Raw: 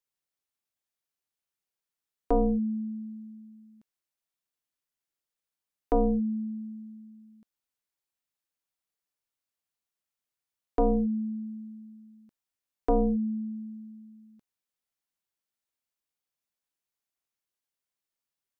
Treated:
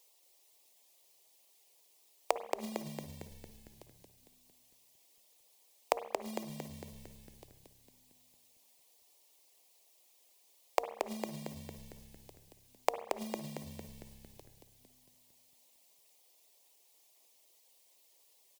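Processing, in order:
Butterworth high-pass 260 Hz 48 dB per octave
reverb reduction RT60 0.98 s
0:03.03–0:03.49: low-shelf EQ 430 Hz −7.5 dB
in parallel at +3 dB: downward compressor 8 to 1, threshold −37 dBFS, peak gain reduction 15.5 dB
on the sum: floating-point word with a short mantissa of 2 bits
soft clipping −16.5 dBFS, distortion −16 dB
phaser with its sweep stopped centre 610 Hz, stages 4
gate with flip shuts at −36 dBFS, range −36 dB
echo with shifted repeats 227 ms, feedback 56%, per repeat −67 Hz, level −5 dB
on a send at −12 dB: convolution reverb RT60 0.80 s, pre-delay 51 ms
on the sum: level +17 dB

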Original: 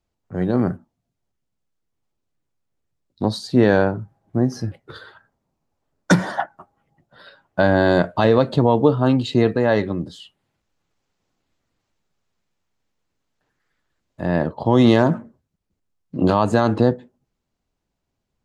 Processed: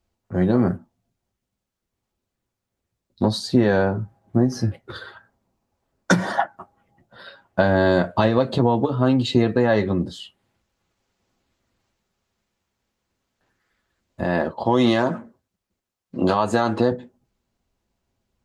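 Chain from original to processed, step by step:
0:14.24–0:16.92: low-shelf EQ 270 Hz −10.5 dB
downward compressor 4 to 1, threshold −17 dBFS, peak gain reduction 7.5 dB
notch comb filter 150 Hz
level +4.5 dB

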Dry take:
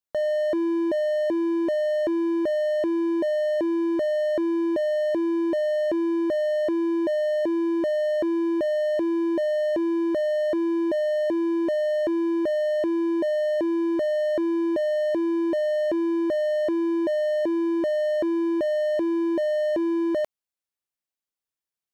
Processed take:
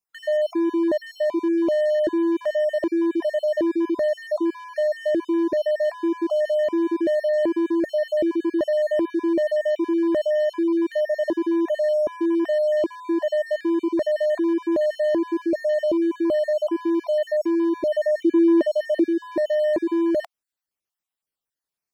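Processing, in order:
time-frequency cells dropped at random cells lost 35%
0:17.94–0:19.06: low shelf with overshoot 180 Hz −12 dB, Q 3
level +3.5 dB

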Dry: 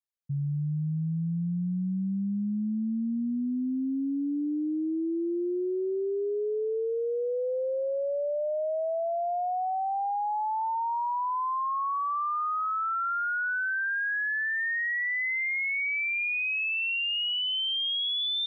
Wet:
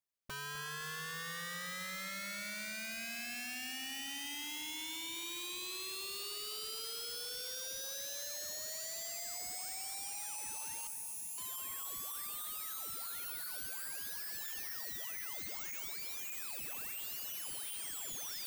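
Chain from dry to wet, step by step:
wrap-around overflow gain 38 dB
0:10.87–0:11.38: inverse Chebyshev band-stop filter 840–3,200 Hz, stop band 60 dB
echo with a time of its own for lows and highs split 2,400 Hz, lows 256 ms, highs 526 ms, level −10 dB

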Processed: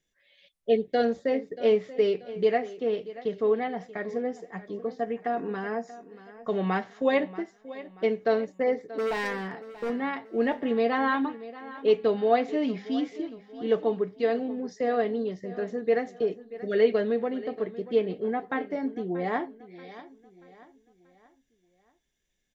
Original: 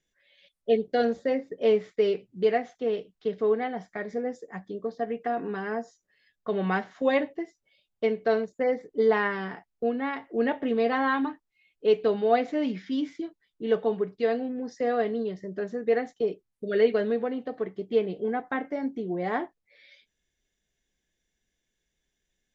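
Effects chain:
notch filter 1,500 Hz, Q 22
0:08.91–0:09.90: hard clipping −26.5 dBFS, distortion −16 dB
on a send: repeating echo 633 ms, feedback 42%, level −16.5 dB

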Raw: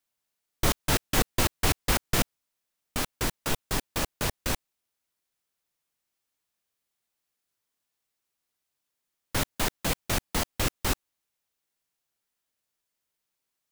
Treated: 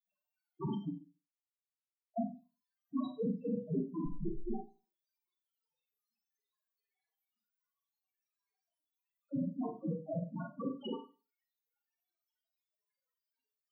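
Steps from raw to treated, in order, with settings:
random phases in long frames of 50 ms
high-pass filter 150 Hz 24 dB per octave
parametric band 8,500 Hz −7 dB 0.35 octaves
0:09.82–0:10.86: output level in coarse steps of 16 dB
brickwall limiter −18 dBFS, peak gain reduction 5.5 dB
0:00.90–0:02.17: silence
downward compressor 2.5 to 1, threshold −33 dBFS, peak gain reduction 5.5 dB
0:03.90–0:04.54: comparator with hysteresis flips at −34 dBFS
spectral peaks only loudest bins 2
four-comb reverb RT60 0.33 s, combs from 31 ms, DRR 1.5 dB
level +9.5 dB

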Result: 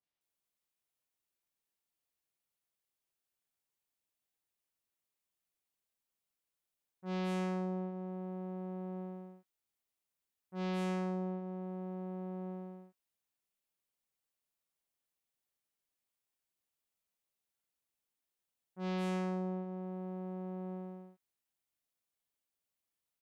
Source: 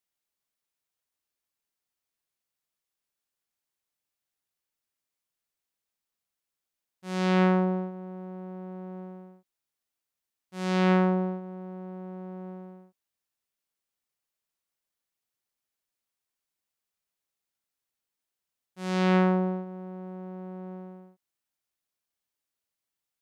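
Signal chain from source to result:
downward compressor 6 to 1, threshold −32 dBFS, peak gain reduction 12.5 dB
three-band delay without the direct sound lows, mids, highs 30/210 ms, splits 1,500/5,200 Hz
level −2 dB

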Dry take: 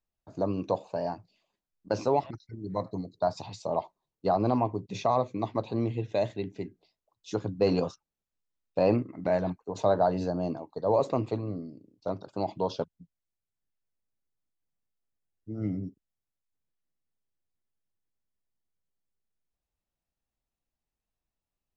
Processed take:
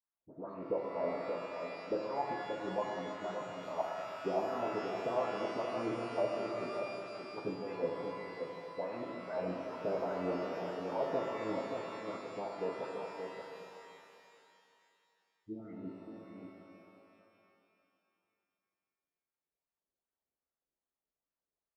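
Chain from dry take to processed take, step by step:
every frequency bin delayed by itself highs late, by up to 210 ms
low-pass filter 4,500 Hz
low-shelf EQ 220 Hz +11 dB
brickwall limiter −19.5 dBFS, peak gain reduction 9 dB
LFO wah 2.5 Hz 380–1,500 Hz, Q 2.3
on a send: single-tap delay 579 ms −6.5 dB
on the sum: reverb with rising layers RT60 2.7 s, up +12 semitones, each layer −8 dB, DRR 1 dB
level −2 dB

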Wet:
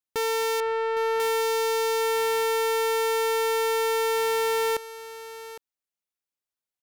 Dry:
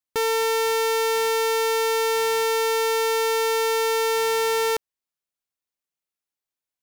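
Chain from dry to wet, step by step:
0:00.60–0:01.20: low-pass filter 2,000 Hz 12 dB per octave
on a send: single-tap delay 809 ms −14.5 dB
on the sum: level −3.5 dB

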